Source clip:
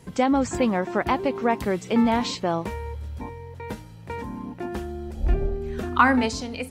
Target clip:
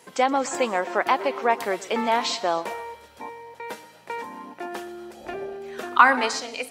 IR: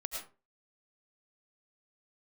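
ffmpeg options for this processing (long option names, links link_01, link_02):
-filter_complex "[0:a]highpass=520,asplit=2[link_01][link_02];[1:a]atrim=start_sample=2205,adelay=123[link_03];[link_02][link_03]afir=irnorm=-1:irlink=0,volume=-16dB[link_04];[link_01][link_04]amix=inputs=2:normalize=0,volume=3.5dB"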